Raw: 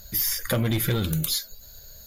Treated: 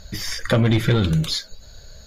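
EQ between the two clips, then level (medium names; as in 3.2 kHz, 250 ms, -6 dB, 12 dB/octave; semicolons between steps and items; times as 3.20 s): distance through air 110 m; +7.0 dB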